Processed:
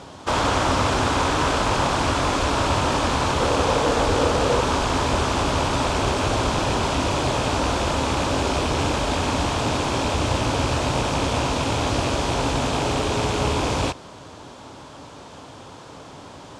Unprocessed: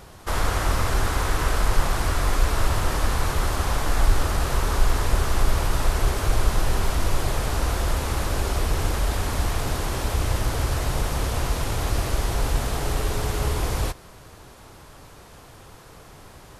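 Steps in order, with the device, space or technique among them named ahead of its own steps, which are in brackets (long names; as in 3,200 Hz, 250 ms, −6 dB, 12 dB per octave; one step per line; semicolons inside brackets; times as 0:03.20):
0:03.40–0:04.61: parametric band 480 Hz +12 dB 0.3 octaves
car door speaker with a rattle (loose part that buzzes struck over −30 dBFS, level −26 dBFS; loudspeaker in its box 96–7,900 Hz, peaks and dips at 270 Hz +8 dB, 580 Hz +4 dB, 920 Hz +5 dB, 1,900 Hz −4 dB, 3,300 Hz +4 dB)
level +4.5 dB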